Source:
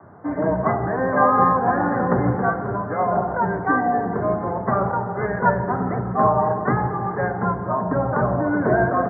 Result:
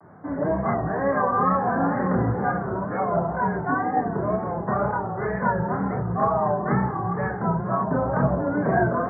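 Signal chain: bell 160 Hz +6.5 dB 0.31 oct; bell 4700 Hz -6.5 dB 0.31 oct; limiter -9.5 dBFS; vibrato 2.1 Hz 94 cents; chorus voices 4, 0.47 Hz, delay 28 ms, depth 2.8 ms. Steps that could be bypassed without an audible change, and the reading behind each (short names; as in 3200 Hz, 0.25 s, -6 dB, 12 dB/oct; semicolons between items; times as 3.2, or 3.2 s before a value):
bell 4700 Hz: input band ends at 1800 Hz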